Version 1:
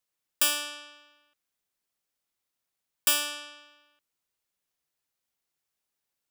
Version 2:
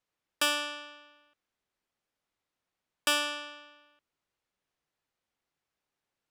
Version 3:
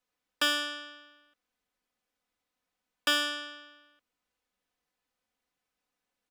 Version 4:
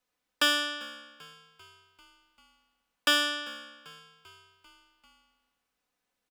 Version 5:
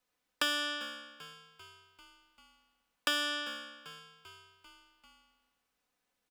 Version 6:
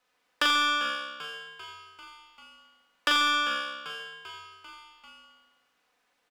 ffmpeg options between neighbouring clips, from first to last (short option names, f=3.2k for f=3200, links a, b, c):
-af "aemphasis=mode=reproduction:type=75fm,volume=4dB"
-filter_complex "[0:a]aecho=1:1:4:0.57,acrossover=split=500|5400[a][b][c];[c]asoftclip=type=hard:threshold=-38.5dB[d];[a][b][d]amix=inputs=3:normalize=0"
-filter_complex "[0:a]asplit=6[a][b][c][d][e][f];[b]adelay=393,afreqshift=-67,volume=-22dB[g];[c]adelay=786,afreqshift=-134,volume=-26.2dB[h];[d]adelay=1179,afreqshift=-201,volume=-30.3dB[i];[e]adelay=1572,afreqshift=-268,volume=-34.5dB[j];[f]adelay=1965,afreqshift=-335,volume=-38.6dB[k];[a][g][h][i][j][k]amix=inputs=6:normalize=0,volume=2.5dB"
-af "acompressor=threshold=-30dB:ratio=3"
-filter_complex "[0:a]asplit=2[a][b];[b]highpass=f=720:p=1,volume=14dB,asoftclip=type=tanh:threshold=-15.5dB[c];[a][c]amix=inputs=2:normalize=0,lowpass=f=2.5k:p=1,volume=-6dB,aecho=1:1:40|86|138.9|199.7|269.7:0.631|0.398|0.251|0.158|0.1,volume=3dB"